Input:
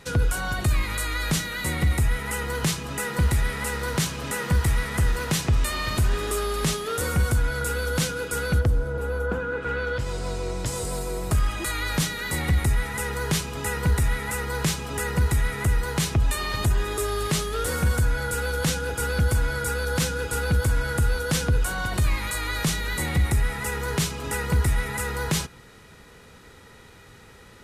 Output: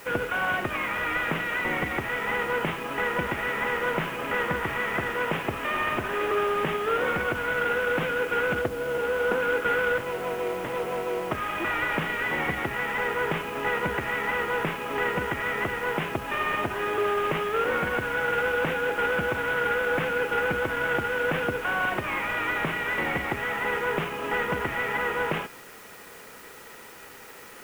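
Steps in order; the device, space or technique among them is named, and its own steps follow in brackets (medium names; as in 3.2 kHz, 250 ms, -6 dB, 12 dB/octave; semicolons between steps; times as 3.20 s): army field radio (band-pass 340–3000 Hz; CVSD coder 16 kbps; white noise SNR 23 dB); trim +5 dB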